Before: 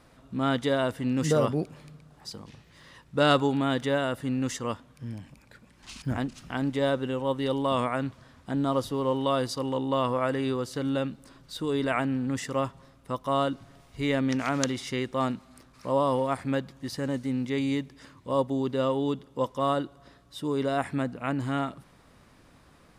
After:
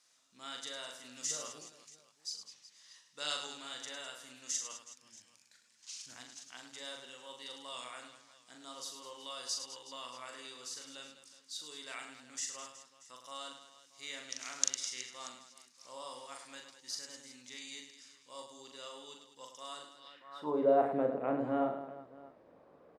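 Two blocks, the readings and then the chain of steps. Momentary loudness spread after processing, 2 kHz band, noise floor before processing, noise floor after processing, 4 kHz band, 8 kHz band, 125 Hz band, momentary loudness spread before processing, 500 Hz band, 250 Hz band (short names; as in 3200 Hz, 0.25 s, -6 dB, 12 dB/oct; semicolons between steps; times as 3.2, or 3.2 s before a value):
21 LU, -13.0 dB, -58 dBFS, -67 dBFS, -5.0 dB, +3.5 dB, -26.0 dB, 13 LU, -11.0 dB, -16.5 dB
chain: notches 60/120 Hz; reverse bouncing-ball echo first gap 40 ms, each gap 1.6×, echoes 5; band-pass sweep 6400 Hz -> 530 Hz, 19.93–20.6; gain +3 dB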